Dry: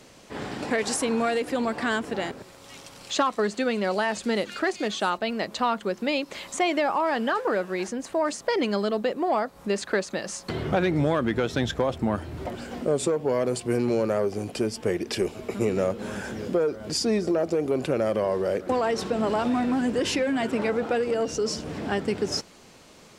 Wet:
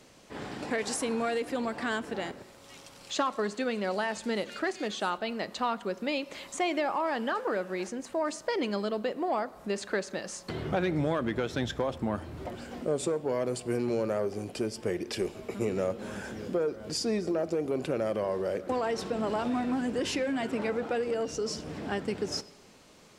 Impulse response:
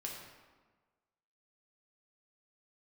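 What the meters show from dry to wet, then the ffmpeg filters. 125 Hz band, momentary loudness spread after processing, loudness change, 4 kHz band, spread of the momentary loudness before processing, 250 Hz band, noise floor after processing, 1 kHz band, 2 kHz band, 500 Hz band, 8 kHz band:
-5.5 dB, 7 LU, -5.5 dB, -5.5 dB, 7 LU, -5.5 dB, -53 dBFS, -5.5 dB, -5.5 dB, -5.5 dB, -5.5 dB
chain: -filter_complex "[0:a]asplit=2[s0][s1];[1:a]atrim=start_sample=2205[s2];[s1][s2]afir=irnorm=-1:irlink=0,volume=0.224[s3];[s0][s3]amix=inputs=2:normalize=0,volume=0.473"

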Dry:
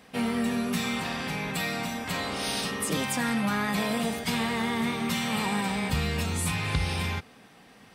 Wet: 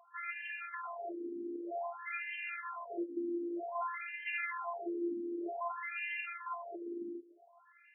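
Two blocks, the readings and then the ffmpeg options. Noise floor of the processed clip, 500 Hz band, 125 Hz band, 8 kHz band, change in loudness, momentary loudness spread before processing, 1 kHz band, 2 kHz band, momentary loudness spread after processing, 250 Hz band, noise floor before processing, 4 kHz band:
-64 dBFS, -7.0 dB, under -40 dB, under -40 dB, -11.5 dB, 4 LU, -8.5 dB, -9.0 dB, 5 LU, -13.0 dB, -54 dBFS, -23.5 dB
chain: -af "afftfilt=real='hypot(re,im)*cos(PI*b)':imag='0':win_size=512:overlap=0.75,highpass=110,lowpass=5300,afftfilt=real='re*between(b*sr/1024,300*pow(2200/300,0.5+0.5*sin(2*PI*0.53*pts/sr))/1.41,300*pow(2200/300,0.5+0.5*sin(2*PI*0.53*pts/sr))*1.41)':imag='im*between(b*sr/1024,300*pow(2200/300,0.5+0.5*sin(2*PI*0.53*pts/sr))/1.41,300*pow(2200/300,0.5+0.5*sin(2*PI*0.53*pts/sr))*1.41)':win_size=1024:overlap=0.75,volume=1.26"

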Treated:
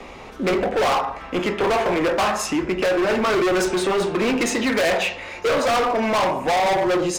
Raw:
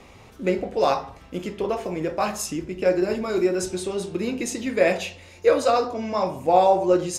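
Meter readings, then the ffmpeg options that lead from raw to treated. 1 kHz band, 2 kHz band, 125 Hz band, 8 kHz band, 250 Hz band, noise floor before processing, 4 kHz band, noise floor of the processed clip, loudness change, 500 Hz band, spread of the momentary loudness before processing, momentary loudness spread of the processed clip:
+3.0 dB, +9.0 dB, +2.0 dB, +3.0 dB, +3.5 dB, -48 dBFS, +8.5 dB, -39 dBFS, +3.0 dB, +1.5 dB, 10 LU, 5 LU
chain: -filter_complex "[0:a]lowpass=f=2900:p=1,equalizer=f=100:w=1:g=-13.5,acrossover=split=320|760|2300[s0][s1][s2][s3];[s2]dynaudnorm=f=240:g=5:m=2.82[s4];[s0][s1][s4][s3]amix=inputs=4:normalize=0,alimiter=limit=0.266:level=0:latency=1:release=443,acontrast=49,asoftclip=type=hard:threshold=0.0668,volume=2"

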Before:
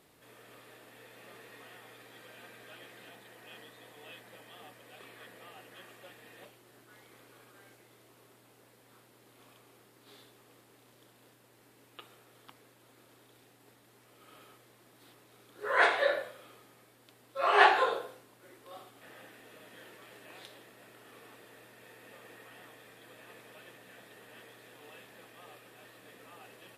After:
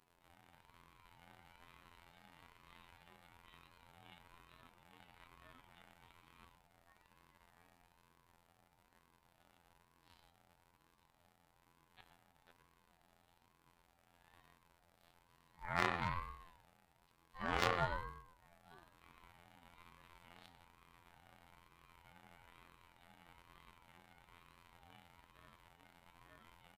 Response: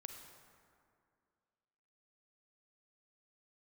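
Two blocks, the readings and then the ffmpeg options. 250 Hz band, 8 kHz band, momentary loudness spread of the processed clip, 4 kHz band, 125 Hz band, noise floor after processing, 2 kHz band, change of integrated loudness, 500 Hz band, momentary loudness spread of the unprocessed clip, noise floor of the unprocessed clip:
-2.5 dB, -7.0 dB, 18 LU, -10.5 dB, no reading, -75 dBFS, -13.5 dB, -12.0 dB, -14.5 dB, 21 LU, -63 dBFS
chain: -filter_complex "[0:a]highshelf=f=3700:g=-5,aeval=exprs='0.119*(abs(mod(val(0)/0.119+3,4)-2)-1)':c=same,afftfilt=real='hypot(re,im)*cos(PI*b)':imag='0':win_size=2048:overlap=0.75,asplit=2[s0][s1];[s1]adelay=118,lowpass=f=950:p=1,volume=0.447,asplit=2[s2][s3];[s3]adelay=118,lowpass=f=950:p=1,volume=0.34,asplit=2[s4][s5];[s5]adelay=118,lowpass=f=950:p=1,volume=0.34,asplit=2[s6][s7];[s7]adelay=118,lowpass=f=950:p=1,volume=0.34[s8];[s2][s4][s6][s8]amix=inputs=4:normalize=0[s9];[s0][s9]amix=inputs=2:normalize=0,aeval=exprs='val(0)*sin(2*PI*450*n/s+450*0.3/1.1*sin(2*PI*1.1*n/s))':c=same,volume=0.631"

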